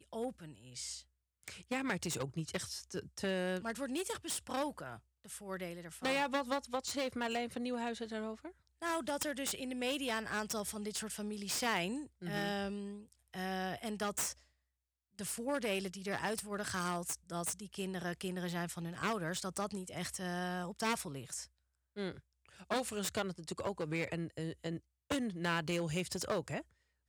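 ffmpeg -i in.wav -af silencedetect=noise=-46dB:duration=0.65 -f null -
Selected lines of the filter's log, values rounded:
silence_start: 14.33
silence_end: 15.19 | silence_duration: 0.86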